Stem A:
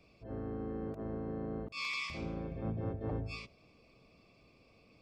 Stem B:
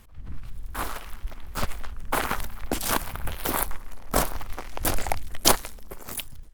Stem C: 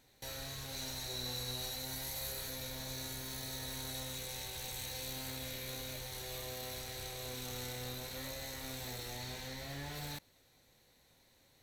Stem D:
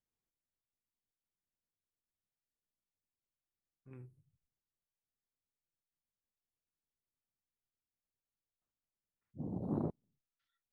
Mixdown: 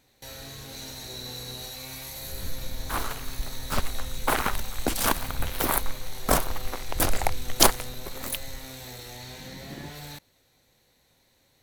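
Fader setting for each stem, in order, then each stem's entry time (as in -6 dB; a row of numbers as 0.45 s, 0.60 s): -12.0 dB, +1.0 dB, +2.5 dB, -7.0 dB; 0.00 s, 2.15 s, 0.00 s, 0.00 s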